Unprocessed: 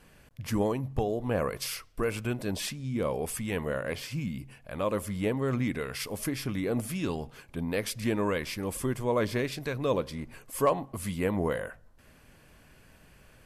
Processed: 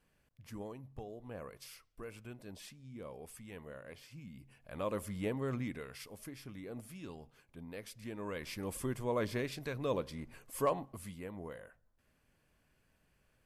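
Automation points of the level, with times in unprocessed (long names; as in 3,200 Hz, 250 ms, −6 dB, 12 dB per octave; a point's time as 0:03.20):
0:04.23 −17.5 dB
0:04.77 −7.5 dB
0:05.46 −7.5 dB
0:06.20 −16 dB
0:08.13 −16 dB
0:08.56 −7 dB
0:10.81 −7 dB
0:11.26 −17 dB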